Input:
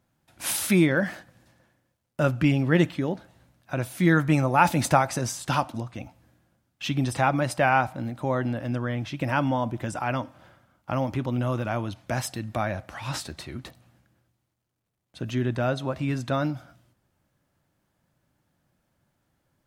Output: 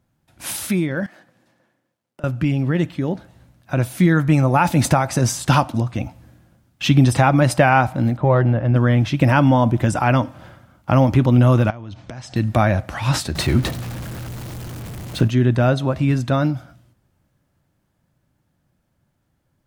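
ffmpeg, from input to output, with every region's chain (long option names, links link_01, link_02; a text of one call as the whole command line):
ffmpeg -i in.wav -filter_complex "[0:a]asettb=1/sr,asplit=3[link_01][link_02][link_03];[link_01]atrim=end=1.064[link_04];[link_02]atrim=start=1.06:end=2.24,asetpts=PTS-STARTPTS,afade=type=in:duration=0.004:curve=qsin,afade=type=out:start_time=1.176:duration=0.004:curve=qsin,highpass=240,highshelf=frequency=5000:gain=-5.5,acompressor=threshold=-43dB:ratio=10:attack=3.2:release=140:knee=1:detection=peak[link_05];[link_03]atrim=start=2.236[link_06];[link_04][link_05]acrossfade=duration=0.004:curve1=hsin:curve2=qsin[link_07];[link_07][link_06]acrossfade=duration=0.004:curve1=qsin:curve2=hsin,asettb=1/sr,asplit=3[link_08][link_09][link_10];[link_08]atrim=end=8.174[link_11];[link_09]atrim=start=8.17:end=8.76,asetpts=PTS-STARTPTS,afade=type=in:duration=0.004:curve=qsin,afade=type=out:start_time=0.586:duration=0.004:curve=qsin,equalizer=frequency=260:width=5.9:gain=-11.5,adynamicsmooth=sensitivity=0.5:basefreq=2200[link_12];[link_10]atrim=start=8.756[link_13];[link_11][link_12]acrossfade=duration=0.004:curve1=hsin:curve2=qsin[link_14];[link_14][link_13]acrossfade=duration=0.004:curve1=qsin:curve2=hsin,asettb=1/sr,asplit=3[link_15][link_16][link_17];[link_15]atrim=end=11.704[link_18];[link_16]atrim=start=11.7:end=12.36,asetpts=PTS-STARTPTS,afade=type=in:duration=0.004:curve=qsin,afade=type=out:start_time=0.656:duration=0.004:curve=qsin,lowpass=frequency=6900:width=0.5412,lowpass=frequency=6900:width=1.3066,acompressor=threshold=-42dB:ratio=10:attack=3.2:release=140:knee=1:detection=peak[link_19];[link_17]atrim=start=12.356[link_20];[link_18][link_19]acrossfade=duration=0.004:curve1=hsin:curve2=qsin[link_21];[link_21][link_20]acrossfade=duration=0.004:curve1=qsin:curve2=hsin,asettb=1/sr,asplit=3[link_22][link_23][link_24];[link_22]atrim=end=13.354[link_25];[link_23]atrim=start=13.35:end=15.28,asetpts=PTS-STARTPTS,afade=type=in:duration=0.004:curve=qsin,afade=type=out:start_time=1.926:duration=0.004:curve=qsin,aeval=exprs='val(0)+0.5*0.00631*sgn(val(0))':channel_layout=same,acontrast=47[link_26];[link_24]atrim=start=15.276[link_27];[link_25][link_26]acrossfade=duration=0.004:curve1=hsin:curve2=qsin[link_28];[link_28][link_27]acrossfade=duration=0.004:curve1=qsin:curve2=hsin,lowshelf=frequency=240:gain=7,alimiter=limit=-11.5dB:level=0:latency=1:release=354,dynaudnorm=framelen=260:gausssize=31:maxgain=11.5dB" out.wav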